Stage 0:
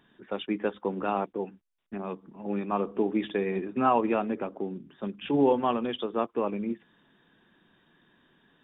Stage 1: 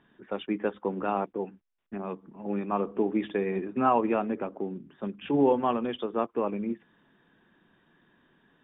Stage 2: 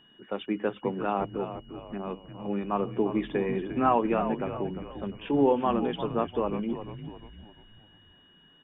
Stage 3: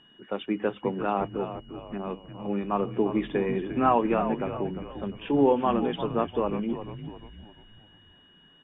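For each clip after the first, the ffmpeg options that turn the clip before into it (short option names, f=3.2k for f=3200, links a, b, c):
-af "lowpass=2.8k"
-filter_complex "[0:a]asplit=6[a][b][c][d][e][f];[b]adelay=349,afreqshift=-78,volume=-10dB[g];[c]adelay=698,afreqshift=-156,volume=-17.1dB[h];[d]adelay=1047,afreqshift=-234,volume=-24.3dB[i];[e]adelay=1396,afreqshift=-312,volume=-31.4dB[j];[f]adelay=1745,afreqshift=-390,volume=-38.5dB[k];[a][g][h][i][j][k]amix=inputs=6:normalize=0,aeval=exprs='val(0)+0.00126*sin(2*PI*2900*n/s)':c=same"
-af "volume=1.5dB" -ar 22050 -c:a aac -b:a 48k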